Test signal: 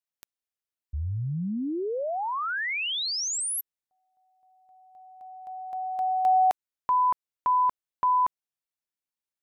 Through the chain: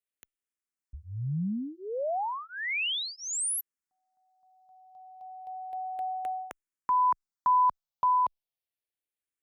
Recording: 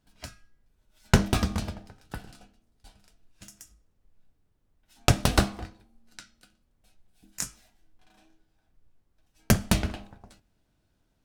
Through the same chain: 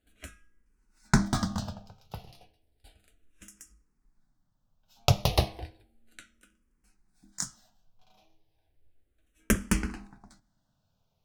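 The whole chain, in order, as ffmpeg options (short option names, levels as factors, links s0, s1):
-filter_complex "[0:a]asplit=2[s0][s1];[s1]afreqshift=-0.33[s2];[s0][s2]amix=inputs=2:normalize=1"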